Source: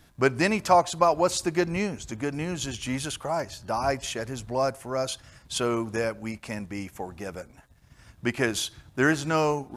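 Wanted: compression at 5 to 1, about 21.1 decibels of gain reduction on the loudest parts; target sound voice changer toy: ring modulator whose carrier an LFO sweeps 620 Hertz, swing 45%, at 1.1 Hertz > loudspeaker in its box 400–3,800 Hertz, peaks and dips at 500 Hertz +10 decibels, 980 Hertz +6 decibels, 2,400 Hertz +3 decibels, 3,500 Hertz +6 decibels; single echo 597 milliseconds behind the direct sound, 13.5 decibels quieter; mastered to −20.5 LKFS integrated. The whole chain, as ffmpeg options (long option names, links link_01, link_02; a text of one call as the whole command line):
ffmpeg -i in.wav -af "acompressor=threshold=-39dB:ratio=5,aecho=1:1:597:0.211,aeval=exprs='val(0)*sin(2*PI*620*n/s+620*0.45/1.1*sin(2*PI*1.1*n/s))':channel_layout=same,highpass=400,equalizer=frequency=500:width_type=q:width=4:gain=10,equalizer=frequency=980:width_type=q:width=4:gain=6,equalizer=frequency=2400:width_type=q:width=4:gain=3,equalizer=frequency=3500:width_type=q:width=4:gain=6,lowpass=frequency=3800:width=0.5412,lowpass=frequency=3800:width=1.3066,volume=22dB" out.wav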